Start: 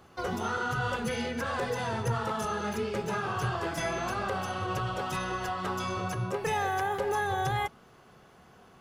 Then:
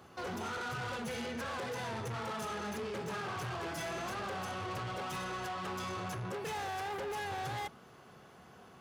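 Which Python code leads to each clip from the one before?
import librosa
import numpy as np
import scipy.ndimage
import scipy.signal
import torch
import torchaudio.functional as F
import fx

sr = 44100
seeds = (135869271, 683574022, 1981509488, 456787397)

y = 10.0 ** (-36.5 / 20.0) * np.tanh(x / 10.0 ** (-36.5 / 20.0))
y = scipy.signal.sosfilt(scipy.signal.butter(2, 72.0, 'highpass', fs=sr, output='sos'), y)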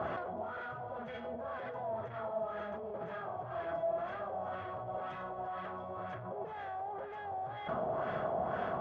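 y = fx.over_compress(x, sr, threshold_db=-50.0, ratio=-1.0)
y = fx.small_body(y, sr, hz=(640.0, 3300.0), ring_ms=40, db=16)
y = fx.filter_lfo_lowpass(y, sr, shape='sine', hz=2.0, low_hz=790.0, high_hz=1800.0, q=1.8)
y = y * 10.0 ** (4.0 / 20.0)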